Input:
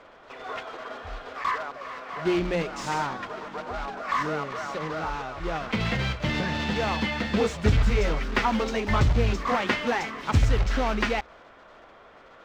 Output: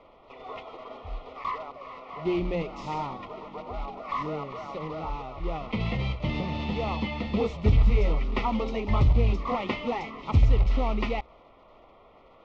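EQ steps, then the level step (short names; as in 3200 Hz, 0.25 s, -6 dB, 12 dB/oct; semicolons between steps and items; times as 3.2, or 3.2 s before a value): Butterworth band-stop 1600 Hz, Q 2.1; air absorption 190 m; low shelf 70 Hz +7.5 dB; -2.5 dB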